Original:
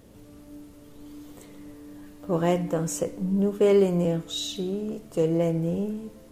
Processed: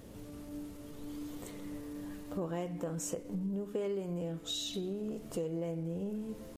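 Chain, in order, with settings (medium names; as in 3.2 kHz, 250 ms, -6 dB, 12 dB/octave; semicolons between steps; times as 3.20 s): tempo 0.96×; compression 6:1, threshold -36 dBFS, peak gain reduction 18.5 dB; trim +1 dB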